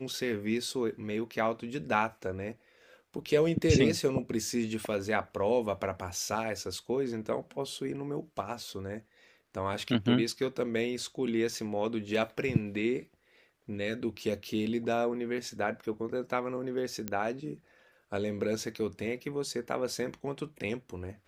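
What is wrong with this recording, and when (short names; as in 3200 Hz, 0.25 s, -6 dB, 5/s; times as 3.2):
17.08 pop -17 dBFS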